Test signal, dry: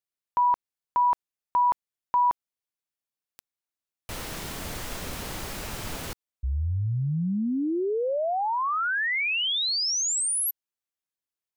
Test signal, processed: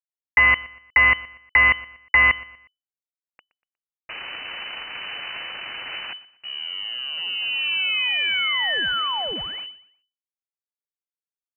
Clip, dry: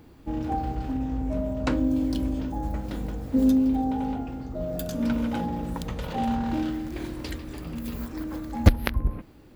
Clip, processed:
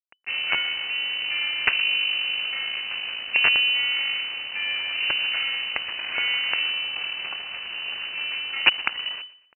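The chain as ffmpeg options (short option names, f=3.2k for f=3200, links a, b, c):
-filter_complex "[0:a]acrossover=split=250 2200:gain=0.224 1 0.158[a][b][c];[a][b][c]amix=inputs=3:normalize=0,asplit=2[d][e];[e]acompressor=threshold=-33dB:ratio=16:attack=35:release=629:knee=6:detection=peak,volume=-0.5dB[f];[d][f]amix=inputs=2:normalize=0,asoftclip=type=hard:threshold=-11dB,aresample=8000,acrusher=bits=4:dc=4:mix=0:aa=0.000001,aresample=44100,lowpass=f=2.6k:t=q:w=0.5098,lowpass=f=2.6k:t=q:w=0.6013,lowpass=f=2.6k:t=q:w=0.9,lowpass=f=2.6k:t=q:w=2.563,afreqshift=-3000,aecho=1:1:120|240|360:0.106|0.0371|0.013,volume=4dB"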